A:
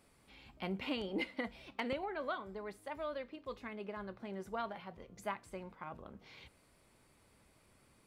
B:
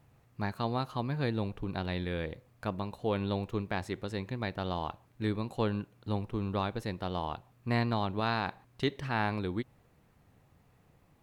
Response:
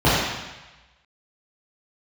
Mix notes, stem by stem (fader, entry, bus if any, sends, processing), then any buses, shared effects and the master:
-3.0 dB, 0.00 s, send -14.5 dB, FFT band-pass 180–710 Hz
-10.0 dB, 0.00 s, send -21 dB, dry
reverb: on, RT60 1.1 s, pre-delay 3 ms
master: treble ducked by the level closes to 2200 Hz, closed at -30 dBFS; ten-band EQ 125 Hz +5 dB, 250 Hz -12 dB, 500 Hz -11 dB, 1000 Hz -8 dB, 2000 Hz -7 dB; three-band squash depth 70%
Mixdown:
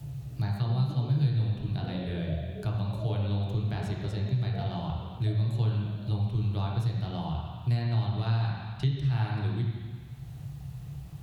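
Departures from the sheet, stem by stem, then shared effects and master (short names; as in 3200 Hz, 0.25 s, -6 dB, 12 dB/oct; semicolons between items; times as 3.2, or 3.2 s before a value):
stem B -10.0 dB -> -2.0 dB; master: missing treble ducked by the level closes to 2200 Hz, closed at -30 dBFS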